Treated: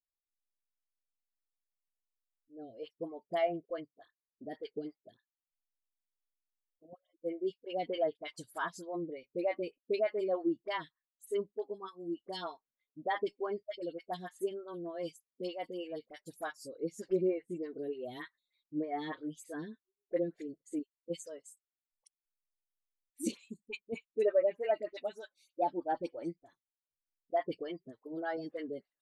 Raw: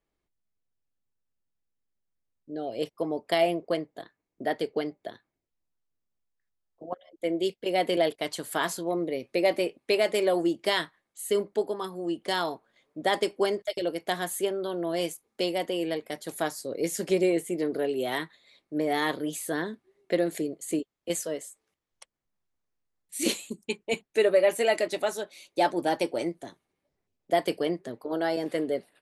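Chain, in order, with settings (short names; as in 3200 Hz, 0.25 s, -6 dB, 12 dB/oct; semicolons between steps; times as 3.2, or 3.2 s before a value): per-bin expansion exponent 1.5; treble ducked by the level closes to 1700 Hz, closed at -23.5 dBFS; dispersion highs, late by 45 ms, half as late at 1100 Hz; photocell phaser 3.3 Hz; gain -3 dB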